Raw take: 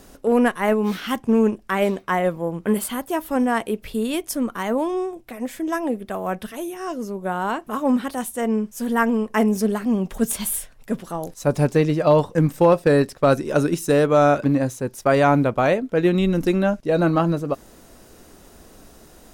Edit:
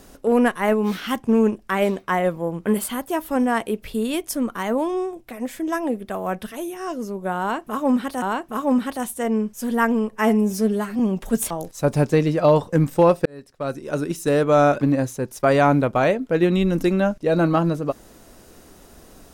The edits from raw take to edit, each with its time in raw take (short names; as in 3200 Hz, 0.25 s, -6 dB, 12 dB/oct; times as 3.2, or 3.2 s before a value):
7.4–8.22 loop, 2 plays
9.29–9.88 stretch 1.5×
10.39–11.13 cut
12.88–14.21 fade in